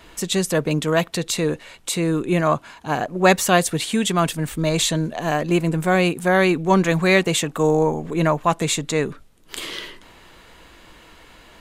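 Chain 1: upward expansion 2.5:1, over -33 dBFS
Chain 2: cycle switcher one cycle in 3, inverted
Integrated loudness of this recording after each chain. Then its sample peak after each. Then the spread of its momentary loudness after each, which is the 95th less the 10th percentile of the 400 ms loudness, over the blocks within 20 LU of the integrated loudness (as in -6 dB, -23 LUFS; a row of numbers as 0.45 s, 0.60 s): -27.0 LUFS, -20.5 LUFS; -3.5 dBFS, -1.0 dBFS; 16 LU, 10 LU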